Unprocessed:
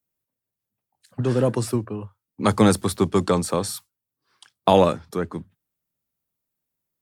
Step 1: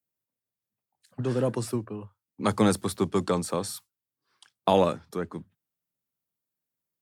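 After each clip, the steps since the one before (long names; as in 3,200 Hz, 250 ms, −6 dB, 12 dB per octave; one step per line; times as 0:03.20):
high-pass filter 94 Hz
level −5.5 dB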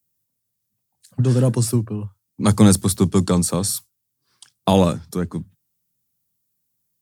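bass and treble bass +13 dB, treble +12 dB
level +2.5 dB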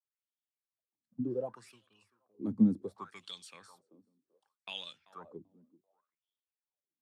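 feedback echo with a high-pass in the loop 387 ms, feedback 22%, high-pass 320 Hz, level −19 dB
LFO wah 0.67 Hz 230–3,400 Hz, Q 8.2
level −4.5 dB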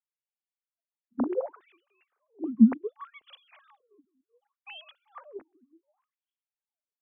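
three sine waves on the formant tracks
level +6.5 dB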